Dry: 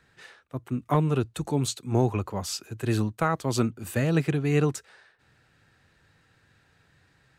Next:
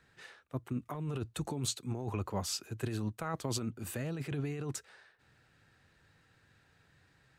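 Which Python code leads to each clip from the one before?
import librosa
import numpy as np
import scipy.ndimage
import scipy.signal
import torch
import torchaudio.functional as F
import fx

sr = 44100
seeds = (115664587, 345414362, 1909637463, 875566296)

y = fx.over_compress(x, sr, threshold_db=-28.0, ratio=-1.0)
y = y * librosa.db_to_amplitude(-7.5)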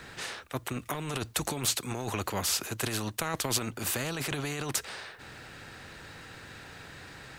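y = fx.spectral_comp(x, sr, ratio=2.0)
y = y * librosa.db_to_amplitude(8.5)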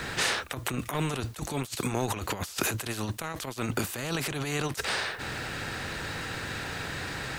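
y = fx.over_compress(x, sr, threshold_db=-37.0, ratio=-0.5)
y = y * librosa.db_to_amplitude(7.0)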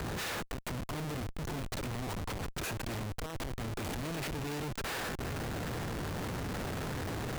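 y = fx.schmitt(x, sr, flips_db=-32.5)
y = y * librosa.db_to_amplitude(-4.0)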